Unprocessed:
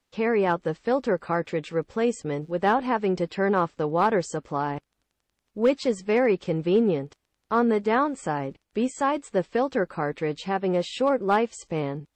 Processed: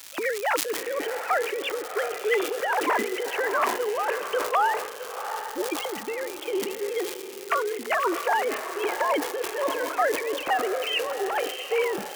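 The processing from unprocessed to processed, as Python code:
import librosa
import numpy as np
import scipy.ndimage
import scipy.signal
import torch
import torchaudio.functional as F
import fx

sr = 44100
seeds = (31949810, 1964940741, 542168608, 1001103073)

p1 = fx.sine_speech(x, sr)
p2 = fx.over_compress(p1, sr, threshold_db=-30.0, ratio=-1.0)
p3 = p2 + fx.echo_diffused(p2, sr, ms=706, feedback_pct=41, wet_db=-8.5, dry=0)
p4 = fx.dmg_crackle(p3, sr, seeds[0], per_s=370.0, level_db=-38.0)
p5 = fx.low_shelf(p4, sr, hz=250.0, db=-8.5)
p6 = fx.hum_notches(p5, sr, base_hz=60, count=4)
p7 = np.sign(p6) * np.maximum(np.abs(p6) - 10.0 ** (-44.0 / 20.0), 0.0)
p8 = p6 + (p7 * librosa.db_to_amplitude(-7.5))
p9 = fx.high_shelf(p8, sr, hz=2000.0, db=11.0)
y = fx.sustainer(p9, sr, db_per_s=69.0)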